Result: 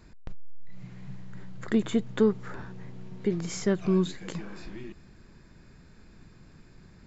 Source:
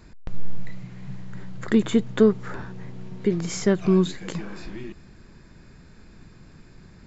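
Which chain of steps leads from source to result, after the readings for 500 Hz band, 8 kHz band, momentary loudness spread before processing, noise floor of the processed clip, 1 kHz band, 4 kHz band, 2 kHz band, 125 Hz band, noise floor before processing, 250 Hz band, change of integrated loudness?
-5.5 dB, no reading, 21 LU, -54 dBFS, -5.0 dB, -5.0 dB, -5.5 dB, -5.5 dB, -50 dBFS, -5.5 dB, -5.5 dB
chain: transformer saturation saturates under 84 Hz; trim -4.5 dB

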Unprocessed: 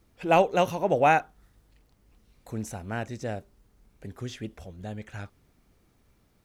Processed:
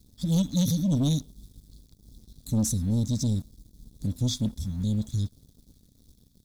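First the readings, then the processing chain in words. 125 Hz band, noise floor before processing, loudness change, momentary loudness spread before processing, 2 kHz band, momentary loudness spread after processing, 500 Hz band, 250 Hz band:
+11.0 dB, -66 dBFS, -0.5 dB, 20 LU, under -25 dB, 8 LU, -15.0 dB, +8.5 dB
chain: brick-wall FIR band-stop 300–3300 Hz; waveshaping leveller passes 2; trim +6 dB

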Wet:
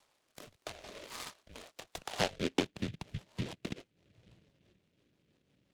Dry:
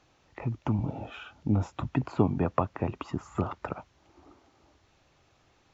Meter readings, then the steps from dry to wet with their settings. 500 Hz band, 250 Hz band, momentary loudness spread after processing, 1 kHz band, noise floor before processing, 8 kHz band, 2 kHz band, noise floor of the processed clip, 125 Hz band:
-6.5 dB, -10.5 dB, 17 LU, -9.0 dB, -66 dBFS, no reading, +1.5 dB, -77 dBFS, -14.5 dB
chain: bass shelf 330 Hz -8.5 dB; band-pass sweep 1.4 kHz -> 410 Hz, 2.01–2.70 s; mistuned SSB -240 Hz 320–2400 Hz; rotary cabinet horn 0.75 Hz, later 6 Hz, at 2.04 s; delay time shaken by noise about 2.5 kHz, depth 0.19 ms; trim +6.5 dB

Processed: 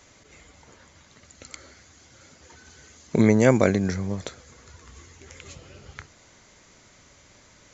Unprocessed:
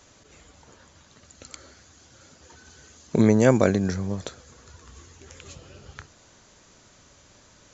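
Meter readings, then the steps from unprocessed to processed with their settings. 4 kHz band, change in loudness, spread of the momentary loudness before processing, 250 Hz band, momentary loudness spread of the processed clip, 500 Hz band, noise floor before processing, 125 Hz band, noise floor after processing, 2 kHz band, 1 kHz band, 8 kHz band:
0.0 dB, 0.0 dB, 16 LU, 0.0 dB, 16 LU, 0.0 dB, -56 dBFS, 0.0 dB, -55 dBFS, +2.5 dB, 0.0 dB, no reading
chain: peaking EQ 2.1 kHz +8.5 dB 0.22 oct

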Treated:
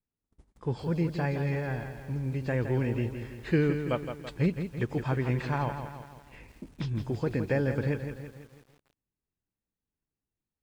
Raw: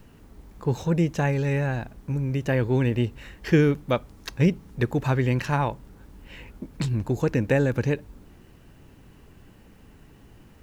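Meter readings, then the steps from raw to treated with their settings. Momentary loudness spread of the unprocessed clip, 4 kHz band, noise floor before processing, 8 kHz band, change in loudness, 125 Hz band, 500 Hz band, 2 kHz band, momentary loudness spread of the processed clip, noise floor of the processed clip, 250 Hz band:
10 LU, -8.0 dB, -52 dBFS, no reading, -6.0 dB, -5.5 dB, -5.5 dB, -6.0 dB, 12 LU, under -85 dBFS, -6.0 dB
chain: knee-point frequency compression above 2.4 kHz 1.5:1; gate -43 dBFS, range -35 dB; bit-crushed delay 166 ms, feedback 55%, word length 8-bit, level -8 dB; trim -6.5 dB

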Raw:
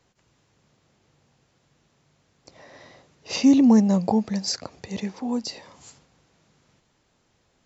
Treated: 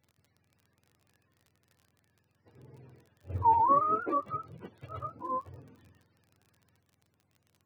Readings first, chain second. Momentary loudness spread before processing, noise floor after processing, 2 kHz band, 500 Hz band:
17 LU, -75 dBFS, -11.0 dB, -8.5 dB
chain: spectrum inverted on a logarithmic axis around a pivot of 500 Hz; crackle 38 per s -42 dBFS; trim -6.5 dB

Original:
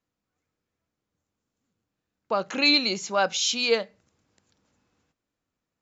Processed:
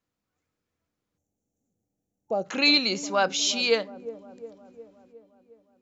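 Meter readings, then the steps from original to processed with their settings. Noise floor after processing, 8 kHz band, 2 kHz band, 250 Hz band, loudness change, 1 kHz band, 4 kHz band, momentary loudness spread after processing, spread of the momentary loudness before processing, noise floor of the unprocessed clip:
-84 dBFS, no reading, 0.0 dB, +0.5 dB, 0.0 dB, -1.0 dB, 0.0 dB, 20 LU, 10 LU, -85 dBFS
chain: feedback echo behind a low-pass 359 ms, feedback 59%, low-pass 510 Hz, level -11 dB; time-frequency box 1.18–2.45 s, 870–5500 Hz -18 dB

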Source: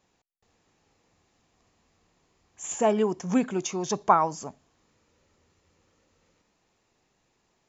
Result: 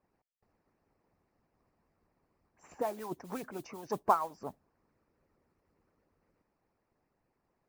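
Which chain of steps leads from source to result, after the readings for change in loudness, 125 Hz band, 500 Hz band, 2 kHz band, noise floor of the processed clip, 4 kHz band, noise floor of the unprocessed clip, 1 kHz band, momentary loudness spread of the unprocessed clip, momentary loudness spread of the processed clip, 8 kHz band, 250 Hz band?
-9.5 dB, -14.0 dB, -10.5 dB, -10.5 dB, -81 dBFS, -15.0 dB, -73 dBFS, -8.0 dB, 17 LU, 15 LU, no reading, -16.0 dB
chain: boxcar filter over 13 samples; in parallel at 0 dB: compression, threshold -29 dBFS, peak gain reduction 14 dB; on the sum: modulation noise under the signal 24 dB; harmonic-percussive split harmonic -17 dB; trim -7 dB

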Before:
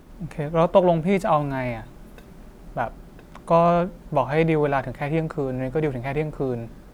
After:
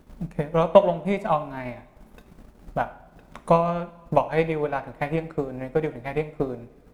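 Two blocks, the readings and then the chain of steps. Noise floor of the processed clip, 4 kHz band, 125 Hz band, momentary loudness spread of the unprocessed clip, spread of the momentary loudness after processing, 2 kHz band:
-53 dBFS, -2.0 dB, -4.5 dB, 13 LU, 16 LU, -3.0 dB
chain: transient shaper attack +11 dB, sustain -8 dB; two-slope reverb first 0.55 s, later 2.2 s, from -18 dB, DRR 10 dB; trim -7 dB

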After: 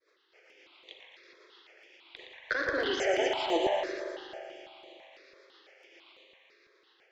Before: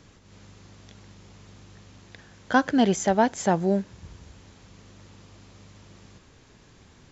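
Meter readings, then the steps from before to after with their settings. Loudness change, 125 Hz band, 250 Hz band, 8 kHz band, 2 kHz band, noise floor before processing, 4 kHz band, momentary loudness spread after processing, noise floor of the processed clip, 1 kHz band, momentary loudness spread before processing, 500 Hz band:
-7.5 dB, under -20 dB, -14.0 dB, no reading, -1.5 dB, -55 dBFS, +2.5 dB, 21 LU, -67 dBFS, -8.5 dB, 5 LU, -3.5 dB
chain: steep high-pass 330 Hz 72 dB/octave; expander -49 dBFS; high-order bell 3.2 kHz +9 dB; in parallel at +1.5 dB: compressor with a negative ratio -27 dBFS, ratio -0.5; on the sum: vibrato 2.8 Hz 51 cents; wavefolder -9 dBFS; Chebyshev shaper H 8 -43 dB, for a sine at -9 dBFS; rotary cabinet horn 7.5 Hz; distance through air 200 m; thinning echo 116 ms, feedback 73%, high-pass 490 Hz, level -6.5 dB; spring tank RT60 2.9 s, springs 41 ms, chirp 25 ms, DRR 1 dB; stepped phaser 6 Hz 790–5300 Hz; trim -3 dB

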